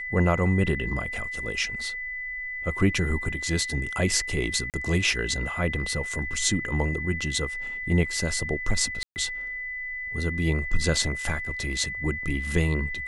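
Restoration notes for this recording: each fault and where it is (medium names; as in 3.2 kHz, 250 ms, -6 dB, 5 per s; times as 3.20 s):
whine 2 kHz -31 dBFS
4.70–4.74 s: dropout 38 ms
9.03–9.16 s: dropout 129 ms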